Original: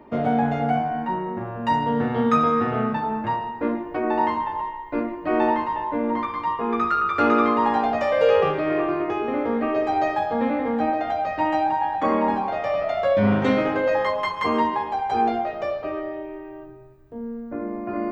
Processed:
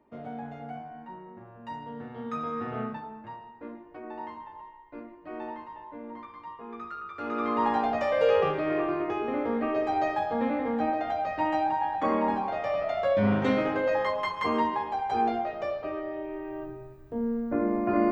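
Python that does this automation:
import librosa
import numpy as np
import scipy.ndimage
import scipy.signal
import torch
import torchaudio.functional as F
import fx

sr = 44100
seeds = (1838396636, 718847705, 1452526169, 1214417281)

y = fx.gain(x, sr, db=fx.line((2.16, -17.5), (2.82, -9.0), (3.14, -17.5), (7.2, -17.5), (7.61, -5.0), (16.03, -5.0), (16.64, 3.0)))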